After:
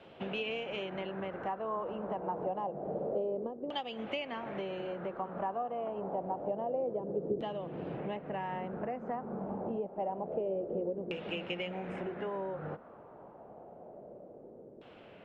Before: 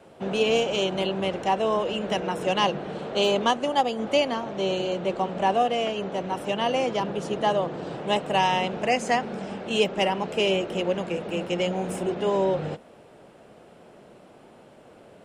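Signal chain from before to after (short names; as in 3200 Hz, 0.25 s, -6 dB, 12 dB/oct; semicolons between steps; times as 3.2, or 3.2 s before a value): 7.31–9.87 tilt shelf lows +7 dB; compressor 10:1, threshold -31 dBFS, peak gain reduction 18.5 dB; LFO low-pass saw down 0.27 Hz 410–3300 Hz; gain -4.5 dB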